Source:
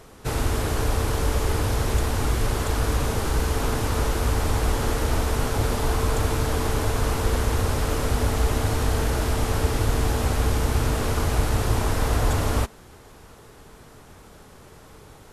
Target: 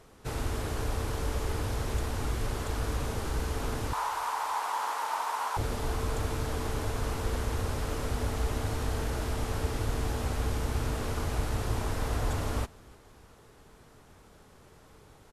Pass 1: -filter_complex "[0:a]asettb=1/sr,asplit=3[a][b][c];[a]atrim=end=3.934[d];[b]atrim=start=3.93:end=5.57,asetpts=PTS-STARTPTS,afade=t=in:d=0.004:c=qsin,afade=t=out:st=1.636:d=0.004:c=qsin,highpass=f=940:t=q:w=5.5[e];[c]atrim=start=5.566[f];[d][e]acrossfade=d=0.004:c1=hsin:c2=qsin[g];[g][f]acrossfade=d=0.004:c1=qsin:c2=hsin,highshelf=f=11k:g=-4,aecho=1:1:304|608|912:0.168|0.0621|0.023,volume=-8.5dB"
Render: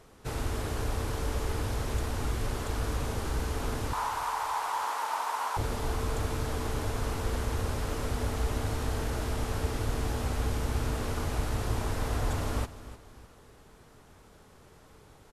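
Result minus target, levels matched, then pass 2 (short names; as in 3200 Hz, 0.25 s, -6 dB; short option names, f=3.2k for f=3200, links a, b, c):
echo-to-direct +10 dB
-filter_complex "[0:a]asettb=1/sr,asplit=3[a][b][c];[a]atrim=end=3.934[d];[b]atrim=start=3.93:end=5.57,asetpts=PTS-STARTPTS,afade=t=in:d=0.004:c=qsin,afade=t=out:st=1.636:d=0.004:c=qsin,highpass=f=940:t=q:w=5.5[e];[c]atrim=start=5.566[f];[d][e]acrossfade=d=0.004:c1=hsin:c2=qsin[g];[g][f]acrossfade=d=0.004:c1=qsin:c2=hsin,highshelf=f=11k:g=-4,aecho=1:1:304|608:0.0531|0.0196,volume=-8.5dB"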